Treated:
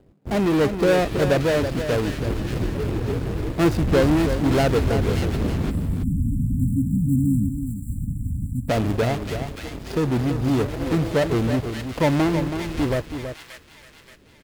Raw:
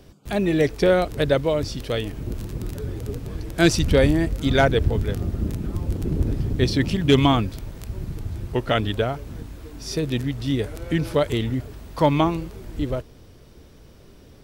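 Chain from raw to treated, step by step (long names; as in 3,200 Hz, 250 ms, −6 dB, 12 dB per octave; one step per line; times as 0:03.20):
running median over 41 samples
low-shelf EQ 110 Hz −7.5 dB
notch filter 5,900 Hz
in parallel at −7 dB: fuzz pedal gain 34 dB, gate −42 dBFS
on the sum: delay with a high-pass on its return 578 ms, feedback 42%, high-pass 2,000 Hz, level −4 dB
time-frequency box erased 0:05.71–0:08.69, 300–7,200 Hz
on a send: single-tap delay 326 ms −8.5 dB
on the sum: level −3 dB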